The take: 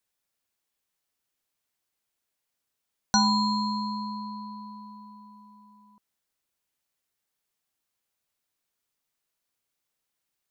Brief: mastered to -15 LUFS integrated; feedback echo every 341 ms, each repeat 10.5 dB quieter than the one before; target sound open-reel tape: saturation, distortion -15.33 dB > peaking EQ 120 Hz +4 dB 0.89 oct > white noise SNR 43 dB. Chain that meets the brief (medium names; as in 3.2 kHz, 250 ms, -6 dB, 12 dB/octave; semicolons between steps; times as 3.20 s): feedback delay 341 ms, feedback 30%, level -10.5 dB; saturation -18 dBFS; peaking EQ 120 Hz +4 dB 0.89 oct; white noise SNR 43 dB; trim +14.5 dB